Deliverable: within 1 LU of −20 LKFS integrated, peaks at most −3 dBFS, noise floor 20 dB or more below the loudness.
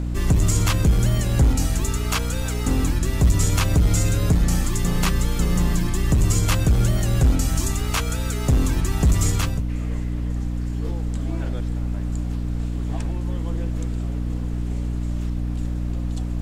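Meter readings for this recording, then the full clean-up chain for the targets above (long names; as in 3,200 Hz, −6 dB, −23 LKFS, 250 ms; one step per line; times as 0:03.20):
mains hum 60 Hz; hum harmonics up to 300 Hz; level of the hum −22 dBFS; background noise floor −26 dBFS; target noise floor −43 dBFS; integrated loudness −23.0 LKFS; sample peak −8.0 dBFS; target loudness −20.0 LKFS
→ mains-hum notches 60/120/180/240/300 Hz
noise reduction from a noise print 17 dB
level +3 dB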